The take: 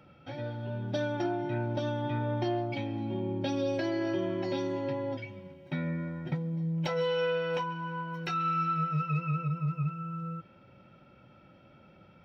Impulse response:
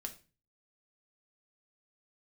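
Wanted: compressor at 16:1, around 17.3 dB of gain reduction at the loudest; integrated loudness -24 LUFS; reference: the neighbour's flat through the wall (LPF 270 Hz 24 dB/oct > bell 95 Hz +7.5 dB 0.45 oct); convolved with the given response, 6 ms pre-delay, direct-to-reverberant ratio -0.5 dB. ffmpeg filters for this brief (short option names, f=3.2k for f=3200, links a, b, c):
-filter_complex "[0:a]acompressor=threshold=-44dB:ratio=16,asplit=2[a][b];[1:a]atrim=start_sample=2205,adelay=6[c];[b][c]afir=irnorm=-1:irlink=0,volume=3dB[d];[a][d]amix=inputs=2:normalize=0,lowpass=f=270:w=0.5412,lowpass=f=270:w=1.3066,equalizer=f=95:t=o:w=0.45:g=7.5,volume=24dB"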